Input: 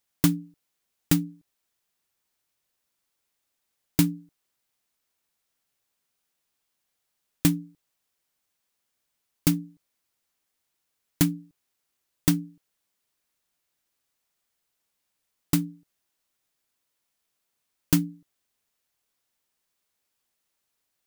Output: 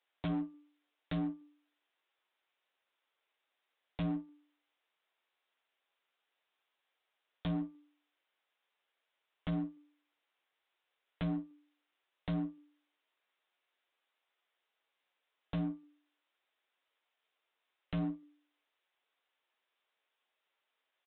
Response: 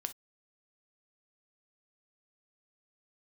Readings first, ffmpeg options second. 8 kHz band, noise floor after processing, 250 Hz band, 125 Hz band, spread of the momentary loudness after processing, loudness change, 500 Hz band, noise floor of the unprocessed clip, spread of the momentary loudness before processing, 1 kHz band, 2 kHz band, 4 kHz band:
below −40 dB, below −85 dBFS, −10.5 dB, −11.0 dB, 11 LU, −12.5 dB, −6.0 dB, −80 dBFS, 14 LU, −5.0 dB, −13.0 dB, −17.0 dB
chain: -filter_complex "[0:a]asubboost=boost=2.5:cutoff=130,acrossover=split=320[link_01][link_02];[link_01]aeval=exprs='sgn(val(0))*max(abs(val(0))-0.00473,0)':channel_layout=same[link_03];[link_03][link_02]amix=inputs=2:normalize=0,bandreject=frequency=294.5:width_type=h:width=4,bandreject=frequency=589:width_type=h:width=4,bandreject=frequency=883.5:width_type=h:width=4,bandreject=frequency=1178:width_type=h:width=4,alimiter=limit=-15.5dB:level=0:latency=1:release=158,aresample=8000,asoftclip=type=hard:threshold=-35dB,aresample=44100,aecho=1:1:11|52:0.398|0.133,volume=1dB"

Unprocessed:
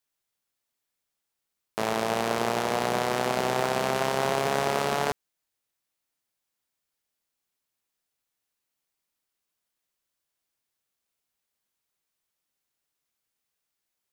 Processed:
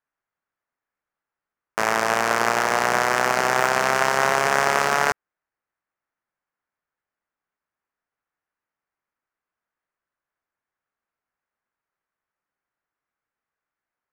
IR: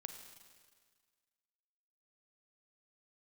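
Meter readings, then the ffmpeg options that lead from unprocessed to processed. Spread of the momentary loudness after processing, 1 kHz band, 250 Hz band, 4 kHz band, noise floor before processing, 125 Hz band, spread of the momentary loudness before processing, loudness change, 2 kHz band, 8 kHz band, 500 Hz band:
4 LU, +7.0 dB, −0.5 dB, +4.0 dB, −84 dBFS, −1.0 dB, 4 LU, +6.5 dB, +11.5 dB, +8.0 dB, +3.0 dB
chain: -af "aexciter=amount=4.5:drive=3.8:freq=5300,adynamicsmooth=sensitivity=7:basefreq=1300,equalizer=frequency=1600:width_type=o:width=2:gain=15,volume=-1.5dB"

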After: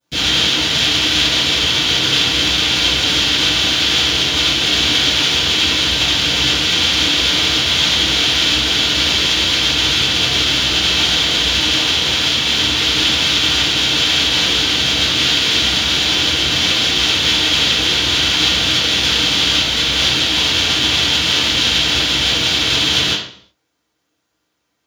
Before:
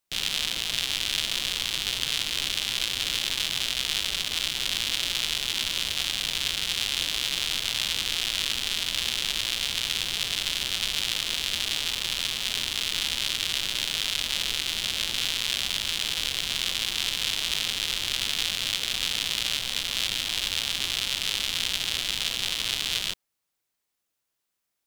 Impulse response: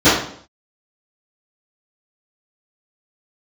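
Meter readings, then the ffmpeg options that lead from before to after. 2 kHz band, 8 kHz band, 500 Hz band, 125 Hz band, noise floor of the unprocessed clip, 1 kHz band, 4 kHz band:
+14.0 dB, +9.5 dB, +19.5 dB, +19.5 dB, −81 dBFS, +16.5 dB, +13.5 dB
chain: -filter_complex "[1:a]atrim=start_sample=2205[link_01];[0:a][link_01]afir=irnorm=-1:irlink=0,volume=-11.5dB"

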